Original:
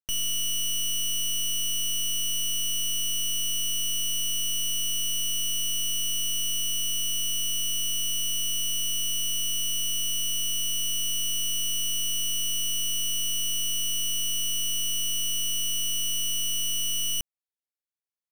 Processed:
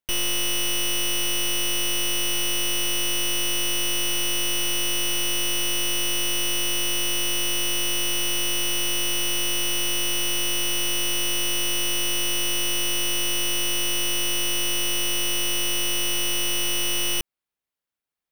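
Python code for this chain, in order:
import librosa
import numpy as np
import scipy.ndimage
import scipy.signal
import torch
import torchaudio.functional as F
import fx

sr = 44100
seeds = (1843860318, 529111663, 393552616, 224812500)

p1 = fx.high_shelf(x, sr, hz=9100.0, db=5.5)
p2 = fx.sample_hold(p1, sr, seeds[0], rate_hz=8500.0, jitter_pct=0)
y = p1 + (p2 * 10.0 ** (-3.5 / 20.0))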